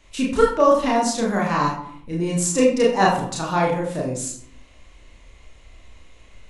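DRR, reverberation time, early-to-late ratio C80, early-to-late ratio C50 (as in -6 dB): -3.5 dB, 0.65 s, 8.5 dB, 5.0 dB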